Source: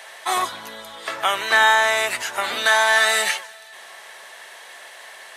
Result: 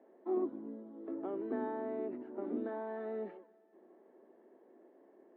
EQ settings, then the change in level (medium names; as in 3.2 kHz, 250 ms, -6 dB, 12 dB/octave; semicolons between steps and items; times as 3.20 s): Butterworth band-pass 290 Hz, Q 2.5; distance through air 170 m; +8.0 dB